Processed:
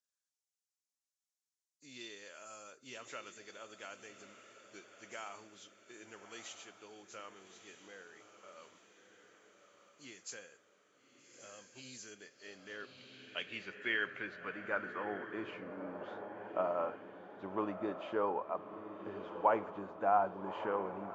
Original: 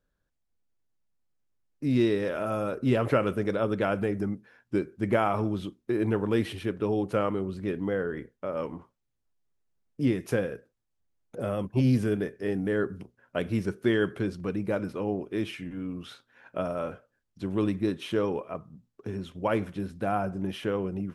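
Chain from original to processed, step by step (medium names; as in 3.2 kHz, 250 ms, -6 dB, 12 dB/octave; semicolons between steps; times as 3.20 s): knee-point frequency compression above 3.1 kHz 1.5:1; echo that smears into a reverb 1245 ms, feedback 49%, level -9.5 dB; band-pass sweep 6.6 kHz -> 910 Hz, 11.98–15.65 s; trim +4 dB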